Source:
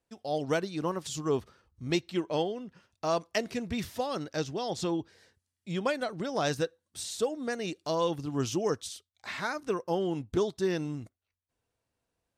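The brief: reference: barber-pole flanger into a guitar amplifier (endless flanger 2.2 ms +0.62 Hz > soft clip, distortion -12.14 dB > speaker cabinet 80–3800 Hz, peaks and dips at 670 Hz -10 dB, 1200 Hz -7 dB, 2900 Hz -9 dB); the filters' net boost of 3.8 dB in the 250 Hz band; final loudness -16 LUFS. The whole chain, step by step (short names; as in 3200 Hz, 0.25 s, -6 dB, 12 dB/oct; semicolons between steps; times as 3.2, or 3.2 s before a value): bell 250 Hz +6 dB; endless flanger 2.2 ms +0.62 Hz; soft clip -28 dBFS; speaker cabinet 80–3800 Hz, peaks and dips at 670 Hz -10 dB, 1200 Hz -7 dB, 2900 Hz -9 dB; gain +22 dB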